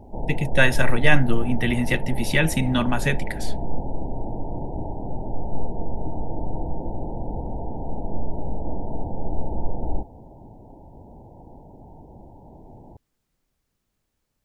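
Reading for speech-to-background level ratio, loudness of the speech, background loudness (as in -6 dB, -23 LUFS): 10.5 dB, -22.5 LUFS, -33.0 LUFS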